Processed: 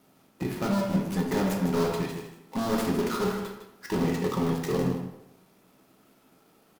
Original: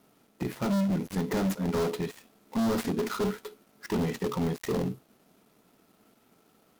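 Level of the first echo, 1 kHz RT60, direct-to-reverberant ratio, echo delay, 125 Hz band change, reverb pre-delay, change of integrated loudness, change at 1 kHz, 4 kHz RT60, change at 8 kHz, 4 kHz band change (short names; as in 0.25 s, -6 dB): -9.0 dB, 0.85 s, -0.5 dB, 0.156 s, +2.0 dB, 4 ms, +2.0 dB, +4.0 dB, 0.55 s, +2.0 dB, +2.5 dB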